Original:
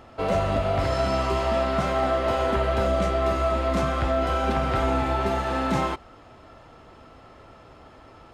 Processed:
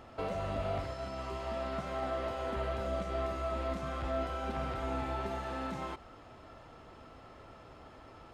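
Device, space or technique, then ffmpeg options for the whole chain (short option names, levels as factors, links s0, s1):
de-esser from a sidechain: -filter_complex "[0:a]asplit=2[s0][s1];[s1]highpass=6200,apad=whole_len=367685[s2];[s0][s2]sidechaincompress=threshold=0.00158:ratio=8:attack=3.5:release=58,volume=0.596"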